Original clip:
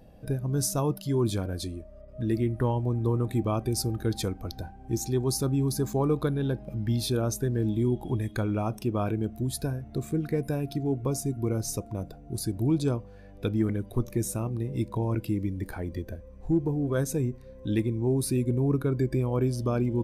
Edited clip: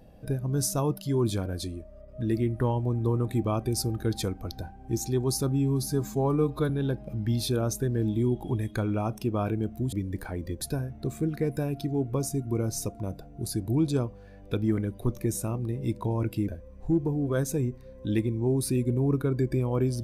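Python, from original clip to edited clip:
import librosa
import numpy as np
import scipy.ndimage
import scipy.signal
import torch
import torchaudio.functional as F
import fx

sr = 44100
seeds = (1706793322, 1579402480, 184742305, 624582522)

y = fx.edit(x, sr, fx.stretch_span(start_s=5.51, length_s=0.79, factor=1.5),
    fx.move(start_s=15.4, length_s=0.69, to_s=9.53), tone=tone)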